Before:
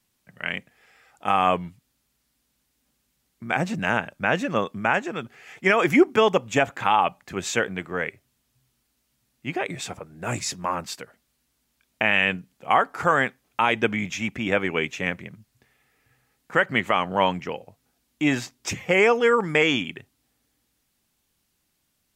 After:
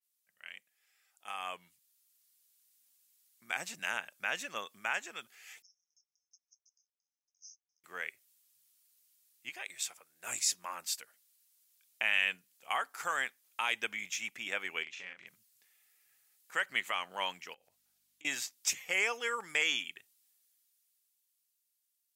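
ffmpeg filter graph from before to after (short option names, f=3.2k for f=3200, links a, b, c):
-filter_complex "[0:a]asettb=1/sr,asplit=3[a][b][c];[a]atrim=end=5.624[d];[b]atrim=start=5.62:end=7.84,asetpts=PTS-STARTPTS,afade=t=in:d=0.004:c=qsin,afade=t=out:st=2.216:d=0.004:c=qsin,acompressor=threshold=-29dB:ratio=3:attack=3.2:release=140:knee=1:detection=peak,asuperpass=centerf=5700:order=20:qfactor=3.6,aeval=exprs='val(0)*pow(10,-35*if(lt(mod(2.9*n/s,1),2*abs(2.9)/1000),1-mod(2.9*n/s,1)/(2*abs(2.9)/1000),(mod(2.9*n/s,1)-2*abs(2.9)/1000)/(1-2*abs(2.9)/1000))/20)':c=same[e];[c]atrim=start=7.836[f];[d][e]acrossfade=d=0.004:c1=hsin:c2=qsin[g];[g][f]acrossfade=d=0.004:c1=qsin:c2=hsin,asettb=1/sr,asplit=3[h][i][j];[h]atrim=end=9.494[k];[i]atrim=start=9.49:end=10.24,asetpts=PTS-STARTPTS,afade=t=in:d=0.004:c=qsin,afade=t=out:st=0.746:d=0.004:c=qsin,lowshelf=f=450:g=-8.5,tremolo=f=250:d=0.462[l];[j]atrim=start=10.236[m];[k][l]acrossfade=d=0.004:c1=hsin:c2=qsin[n];[n][m]acrossfade=d=0.004:c1=qsin:c2=hsin,asettb=1/sr,asplit=3[o][p][q];[o]atrim=end=14.834[r];[p]atrim=start=14.83:end=15.27,asetpts=PTS-STARTPTS,afade=t=in:d=0.004:c=qsin,afade=t=out:st=0.436:d=0.004:c=qsin,lowpass=4.1k,acompressor=threshold=-35dB:ratio=2.5:attack=3.2:release=140:knee=1:detection=peak,asplit=2[s][t];[t]adelay=38,volume=-3.5dB[u];[s][u]amix=inputs=2:normalize=0,atrim=end_sample=19404[v];[q]atrim=start=15.266[w];[r][v]acrossfade=d=0.004:c1=hsin:c2=qsin[x];[x][w]acrossfade=d=0.004:c1=qsin:c2=hsin,asettb=1/sr,asplit=3[y][z][aa];[y]atrim=end=17.544[ab];[z]atrim=start=17.54:end=18.25,asetpts=PTS-STARTPTS,afade=t=in:d=0.004:c=qsin,afade=t=out:st=0.706:d=0.004:c=qsin,highshelf=f=5.4k:g=-6.5,acompressor=threshold=-44dB:ratio=6:attack=3.2:release=140:knee=1:detection=peak,aeval=exprs='val(0)+0.00126*(sin(2*PI*50*n/s)+sin(2*PI*2*50*n/s)/2+sin(2*PI*3*50*n/s)/3+sin(2*PI*4*50*n/s)/4+sin(2*PI*5*50*n/s)/5)':c=same[ac];[aa]atrim=start=18.246[ad];[ab][ac]acrossfade=d=0.004:c1=hsin:c2=qsin[ae];[ae][ad]acrossfade=d=0.004:c1=qsin:c2=hsin,aderivative,dynaudnorm=f=110:g=31:m=11dB,adynamicequalizer=threshold=0.0178:dfrequency=3200:dqfactor=0.7:tfrequency=3200:tqfactor=0.7:attack=5:release=100:ratio=0.375:range=2:mode=cutabove:tftype=highshelf,volume=-9dB"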